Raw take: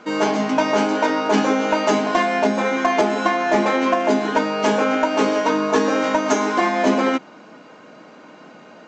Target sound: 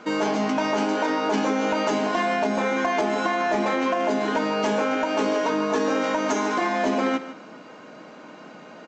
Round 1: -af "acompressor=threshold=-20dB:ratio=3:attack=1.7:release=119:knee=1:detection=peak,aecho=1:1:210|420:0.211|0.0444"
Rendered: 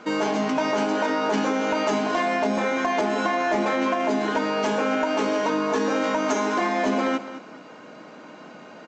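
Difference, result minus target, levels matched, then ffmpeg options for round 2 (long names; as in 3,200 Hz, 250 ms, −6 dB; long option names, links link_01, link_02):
echo 60 ms late
-af "acompressor=threshold=-20dB:ratio=3:attack=1.7:release=119:knee=1:detection=peak,aecho=1:1:150|300:0.211|0.0444"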